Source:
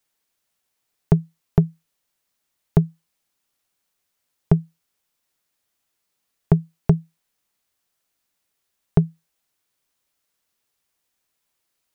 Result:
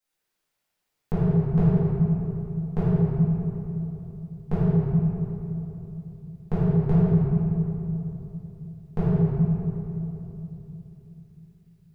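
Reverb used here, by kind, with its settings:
rectangular room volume 170 cubic metres, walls hard, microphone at 2.1 metres
level −13.5 dB

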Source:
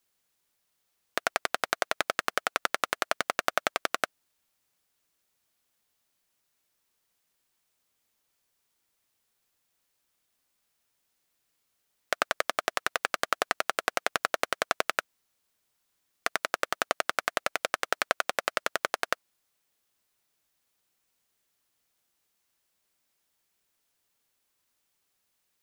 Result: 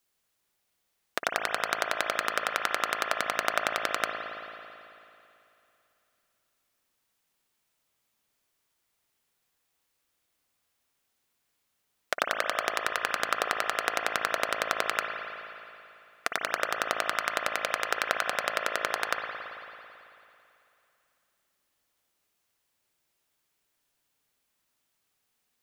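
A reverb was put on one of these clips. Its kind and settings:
spring reverb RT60 2.8 s, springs 55 ms, chirp 45 ms, DRR 2 dB
level −1 dB

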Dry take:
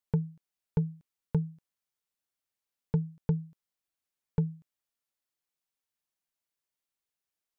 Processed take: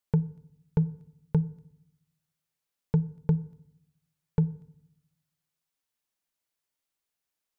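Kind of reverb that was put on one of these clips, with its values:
feedback delay network reverb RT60 0.73 s, low-frequency decay 1.55×, high-frequency decay 0.5×, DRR 17.5 dB
level +3 dB

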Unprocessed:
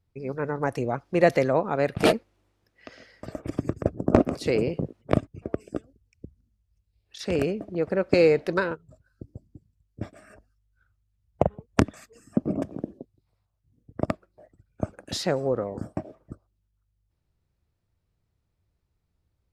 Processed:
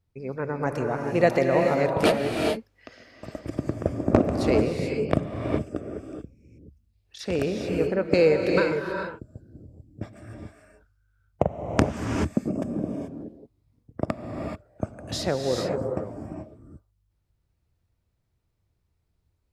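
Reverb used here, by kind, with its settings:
reverb whose tail is shaped and stops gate 460 ms rising, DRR 2 dB
level −1 dB

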